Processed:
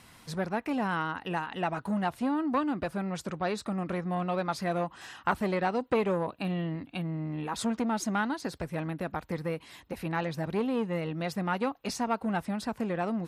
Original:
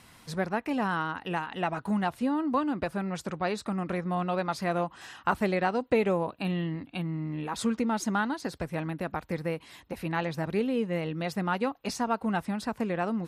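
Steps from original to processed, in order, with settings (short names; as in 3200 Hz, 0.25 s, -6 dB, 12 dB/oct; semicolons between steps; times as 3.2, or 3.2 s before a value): core saturation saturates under 800 Hz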